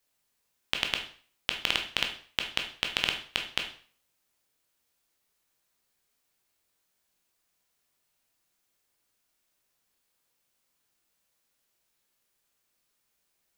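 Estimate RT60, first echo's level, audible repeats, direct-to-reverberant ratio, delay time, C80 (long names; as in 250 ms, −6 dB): 0.45 s, no echo audible, no echo audible, 2.5 dB, no echo audible, 13.0 dB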